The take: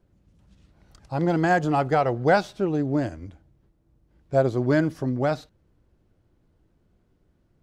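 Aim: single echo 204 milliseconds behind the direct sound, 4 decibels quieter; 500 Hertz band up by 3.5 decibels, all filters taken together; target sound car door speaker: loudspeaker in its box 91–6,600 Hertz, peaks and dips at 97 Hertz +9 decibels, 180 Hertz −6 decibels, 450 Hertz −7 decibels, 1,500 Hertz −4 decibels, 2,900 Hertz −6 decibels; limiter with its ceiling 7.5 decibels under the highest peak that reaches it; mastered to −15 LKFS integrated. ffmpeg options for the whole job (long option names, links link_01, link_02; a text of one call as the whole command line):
ffmpeg -i in.wav -af "equalizer=frequency=500:width_type=o:gain=7.5,alimiter=limit=-10.5dB:level=0:latency=1,highpass=91,equalizer=frequency=97:width_type=q:width=4:gain=9,equalizer=frequency=180:width_type=q:width=4:gain=-6,equalizer=frequency=450:width_type=q:width=4:gain=-7,equalizer=frequency=1500:width_type=q:width=4:gain=-4,equalizer=frequency=2900:width_type=q:width=4:gain=-6,lowpass=frequency=6600:width=0.5412,lowpass=frequency=6600:width=1.3066,aecho=1:1:204:0.631,volume=8dB" out.wav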